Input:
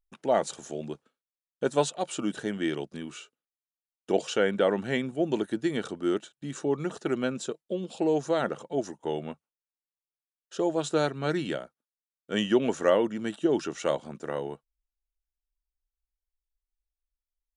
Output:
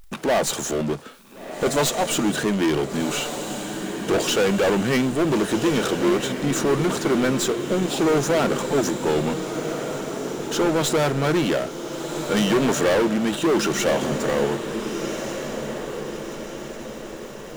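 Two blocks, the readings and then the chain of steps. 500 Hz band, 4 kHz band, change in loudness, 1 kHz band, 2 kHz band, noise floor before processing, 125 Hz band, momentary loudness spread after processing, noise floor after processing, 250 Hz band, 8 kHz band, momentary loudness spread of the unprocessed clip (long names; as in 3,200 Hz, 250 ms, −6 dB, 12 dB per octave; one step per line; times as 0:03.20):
+6.5 dB, +11.0 dB, +6.5 dB, +8.0 dB, +10.0 dB, below −85 dBFS, +11.0 dB, 11 LU, −37 dBFS, +8.5 dB, +14.5 dB, 13 LU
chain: stylus tracing distortion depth 0.025 ms
hard clipping −24.5 dBFS, distortion −8 dB
power curve on the samples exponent 0.5
feedback delay with all-pass diffusion 1,453 ms, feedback 52%, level −7.5 dB
level +8 dB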